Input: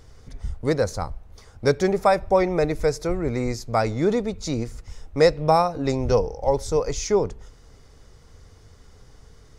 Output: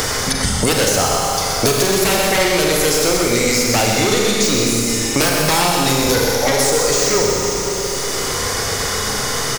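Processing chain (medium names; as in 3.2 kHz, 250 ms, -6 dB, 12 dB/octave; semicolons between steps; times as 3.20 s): pre-emphasis filter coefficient 0.8; spectral noise reduction 6 dB; bass shelf 440 Hz -10 dB; in parallel at +0.5 dB: compression, threshold -44 dBFS, peak gain reduction 16 dB; on the sum: sine folder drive 16 dB, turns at -16.5 dBFS; 0.86–1.83 s: small resonant body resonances 430/680/1300 Hz, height 8 dB; on a send: delay 125 ms -5.5 dB; on the sum: Schroeder reverb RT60 1.6 s, combs from 30 ms, DRR -1 dB; three bands compressed up and down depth 100%; trim +1.5 dB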